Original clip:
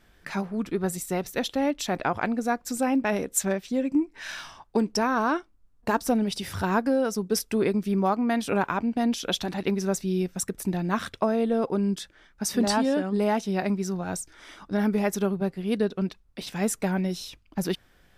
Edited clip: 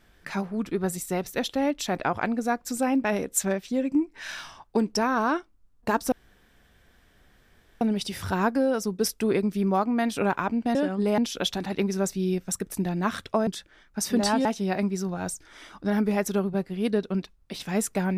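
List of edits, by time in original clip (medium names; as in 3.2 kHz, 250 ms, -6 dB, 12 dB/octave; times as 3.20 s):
6.12 s: insert room tone 1.69 s
11.35–11.91 s: delete
12.89–13.32 s: move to 9.06 s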